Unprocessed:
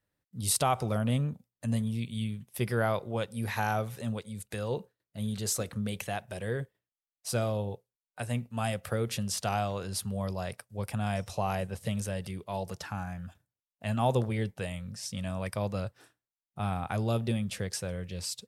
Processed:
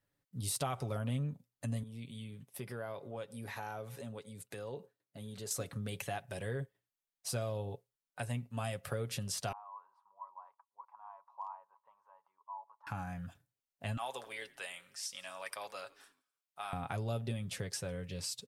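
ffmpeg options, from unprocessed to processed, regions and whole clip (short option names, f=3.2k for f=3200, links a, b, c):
-filter_complex "[0:a]asettb=1/sr,asplit=3[a][b][c];[a]atrim=end=1.834[d];[b]atrim=start=1.83:end=5.51,asetpts=PTS-STARTPTS,afade=t=in:d=0.004:c=qsin,afade=t=out:st=3.676:d=0.004:c=qsin,highpass=f=360:p=1,tiltshelf=f=760:g=4,acompressor=threshold=-43dB:ratio=2:attack=3.2:release=140:knee=1:detection=peak[e];[c]atrim=start=5.506[f];[d][e]acrossfade=d=0.004:c1=hsin:c2=qsin[g];[g][f]acrossfade=d=0.004:c1=qsin:c2=hsin,asettb=1/sr,asplit=3[h][i][j];[h]atrim=end=9.524[k];[i]atrim=start=9.52:end=12.87,asetpts=PTS-STARTPTS,afade=t=in:d=0.004:c=qsin,afade=t=out:st=3.346:d=0.004:c=qsin,asuperpass=centerf=990:order=4:qfactor=5.3,aemphasis=mode=production:type=50fm,asoftclip=type=hard:threshold=-32dB[l];[j]atrim=start=12.866[m];[k][l]acrossfade=d=0.004:c1=hsin:c2=qsin[n];[n][m]acrossfade=d=0.004:c1=qsin:c2=hsin,asettb=1/sr,asplit=3[o][p][q];[o]atrim=end=13.974[r];[p]atrim=start=13.97:end=16.73,asetpts=PTS-STARTPTS,afade=t=in:d=0.004:c=qsin,afade=t=out:st=2.756:d=0.004:c=qsin,highpass=950,asplit=5[s][t][u][v][w];[t]adelay=85,afreqshift=-74,volume=-22dB[x];[u]adelay=170,afreqshift=-148,volume=-26.7dB[y];[v]adelay=255,afreqshift=-222,volume=-31.5dB[z];[w]adelay=340,afreqshift=-296,volume=-36.2dB[aa];[s][x][y][z][aa]amix=inputs=5:normalize=0,atrim=end_sample=121716[ab];[q]atrim=start=16.726[ac];[r][ab]acrossfade=d=0.004:c1=hsin:c2=qsin[ad];[ad][ac]acrossfade=d=0.004:c1=qsin:c2=hsin,deesser=0.4,aecho=1:1:7.2:0.44,acompressor=threshold=-37dB:ratio=2,volume=-1.5dB"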